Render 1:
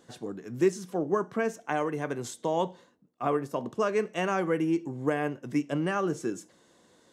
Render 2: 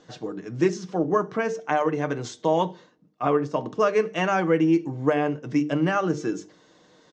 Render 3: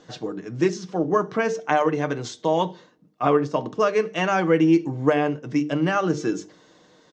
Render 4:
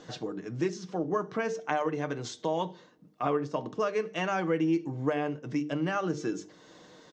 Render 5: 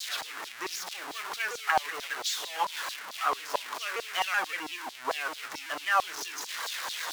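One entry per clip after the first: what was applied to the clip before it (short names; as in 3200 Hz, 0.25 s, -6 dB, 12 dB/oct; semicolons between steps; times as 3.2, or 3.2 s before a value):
steep low-pass 6400 Hz 36 dB/oct; notches 50/100/150/200/250/300/350/400/450 Hz; comb 6.5 ms, depth 40%; gain +5 dB
dynamic EQ 4100 Hz, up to +4 dB, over -47 dBFS, Q 1.3; tremolo 0.62 Hz, depth 28%; gain +3 dB
compressor 1.5:1, threshold -46 dBFS, peak gain reduction 12 dB; gain +1.5 dB
zero-crossing step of -30 dBFS; LFO high-pass saw down 4.5 Hz 770–4400 Hz; shaped vibrato saw down 5.3 Hz, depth 160 cents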